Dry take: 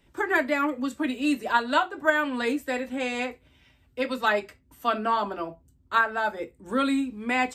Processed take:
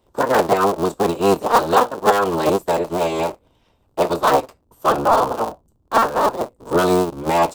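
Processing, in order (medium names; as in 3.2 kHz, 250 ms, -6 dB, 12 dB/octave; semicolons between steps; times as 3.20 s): cycle switcher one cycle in 3, inverted; waveshaping leveller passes 1; graphic EQ 500/1000/2000 Hz +6/+8/-12 dB; trim +1.5 dB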